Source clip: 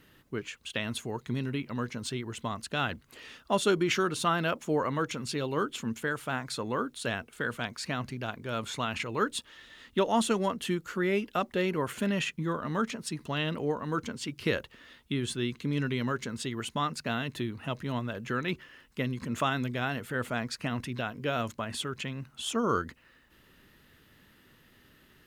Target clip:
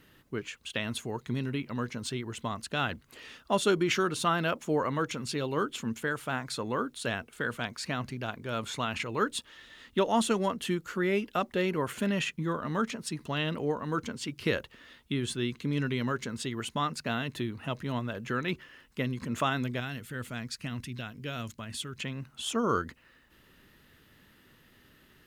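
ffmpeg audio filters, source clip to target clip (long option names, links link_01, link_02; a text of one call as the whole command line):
ffmpeg -i in.wav -filter_complex "[0:a]asettb=1/sr,asplit=3[link_01][link_02][link_03];[link_01]atrim=end=19.804[link_04];[link_02]atrim=start=19.8:end=22,asetpts=PTS-STARTPTS,afade=type=in:duration=0.004:curve=qsin,afade=type=out:start_time=2.196:duration=0.004:curve=qsin,equalizer=frequency=730:width=0.47:gain=-11[link_05];[link_03]atrim=start=21.996[link_06];[link_04][link_05]acrossfade=duration=0.004:curve1=hsin:curve2=qsin[link_07];[link_07][link_06]acrossfade=duration=0.004:curve1=qsin:curve2=hsin" out.wav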